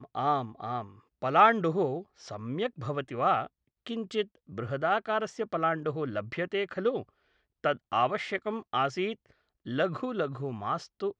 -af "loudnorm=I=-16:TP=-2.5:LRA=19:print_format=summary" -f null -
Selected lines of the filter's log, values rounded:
Input Integrated:    -30.7 LUFS
Input True Peak:      -8.5 dBTP
Input LRA:             4.0 LU
Input Threshold:     -41.1 LUFS